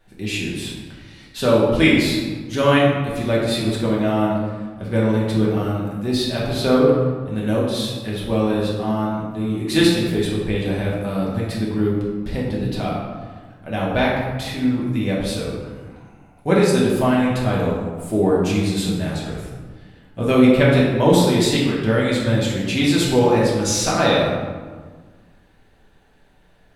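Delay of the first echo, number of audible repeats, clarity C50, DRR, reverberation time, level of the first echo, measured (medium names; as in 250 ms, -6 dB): no echo, no echo, 0.5 dB, -6.0 dB, 1.5 s, no echo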